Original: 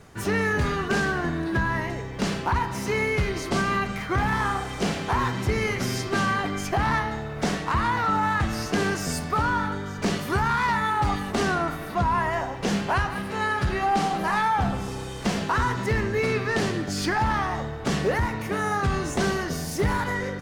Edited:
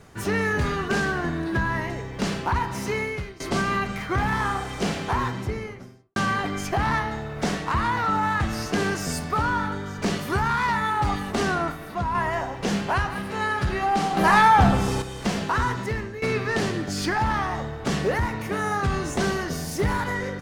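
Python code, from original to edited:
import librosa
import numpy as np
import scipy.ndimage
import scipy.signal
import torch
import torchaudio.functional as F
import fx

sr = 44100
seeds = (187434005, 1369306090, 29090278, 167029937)

y = fx.studio_fade_out(x, sr, start_s=5.03, length_s=1.13)
y = fx.edit(y, sr, fx.fade_out_to(start_s=2.85, length_s=0.55, floor_db=-21.0),
    fx.clip_gain(start_s=11.72, length_s=0.43, db=-3.5),
    fx.clip_gain(start_s=14.17, length_s=0.85, db=7.5),
    fx.fade_out_to(start_s=15.69, length_s=0.53, floor_db=-13.5), tone=tone)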